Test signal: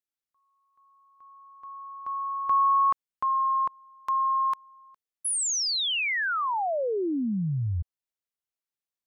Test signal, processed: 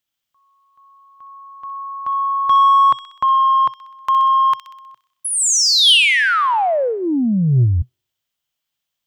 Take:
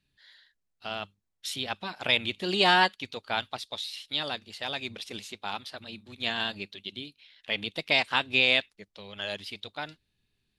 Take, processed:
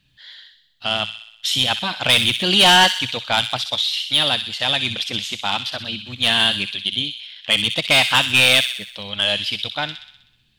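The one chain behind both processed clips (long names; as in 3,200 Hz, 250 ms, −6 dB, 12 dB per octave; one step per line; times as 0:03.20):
in parallel at −4 dB: hard clipping −19 dBFS
on the sum: thirty-one-band graphic EQ 125 Hz +7 dB, 400 Hz −9 dB, 3,150 Hz +9 dB, 10,000 Hz −7 dB
soft clipping −15 dBFS
delay with a high-pass on its return 63 ms, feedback 59%, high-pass 2,400 Hz, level −6 dB
level +7.5 dB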